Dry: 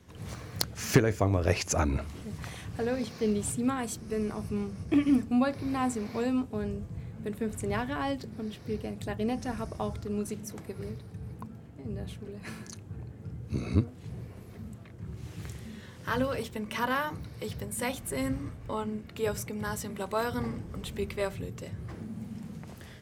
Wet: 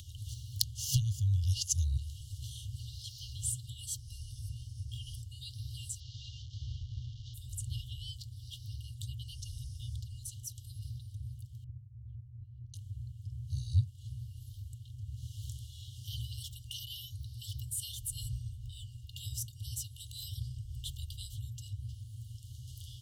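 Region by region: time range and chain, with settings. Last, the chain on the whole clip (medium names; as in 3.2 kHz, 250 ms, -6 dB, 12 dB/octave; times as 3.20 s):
6.00–7.34 s: one-bit delta coder 32 kbps, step -40 dBFS + treble shelf 3.9 kHz -6.5 dB
11.64–12.74 s: compressor with a negative ratio -47 dBFS + band-pass filter 110 Hz, Q 1 + distance through air 240 m
whole clip: FFT band-reject 130–2800 Hz; upward compressor, threshold -40 dBFS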